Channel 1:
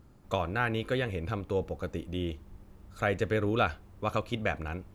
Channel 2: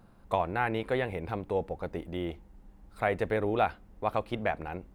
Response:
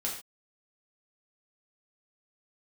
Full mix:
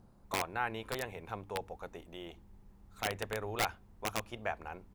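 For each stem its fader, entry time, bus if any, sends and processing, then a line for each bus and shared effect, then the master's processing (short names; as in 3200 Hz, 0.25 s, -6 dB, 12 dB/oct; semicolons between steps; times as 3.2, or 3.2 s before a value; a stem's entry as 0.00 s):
-9.5 dB, 0.00 s, no send, notches 50/100 Hz
-5.5 dB, 0.4 ms, polarity flipped, no send, band shelf 2100 Hz -9 dB; wrapped overs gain 19.5 dB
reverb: off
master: dry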